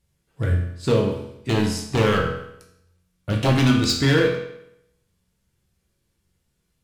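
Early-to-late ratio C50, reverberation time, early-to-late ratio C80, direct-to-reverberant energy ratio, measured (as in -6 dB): 5.0 dB, 0.80 s, 8.0 dB, -0.5 dB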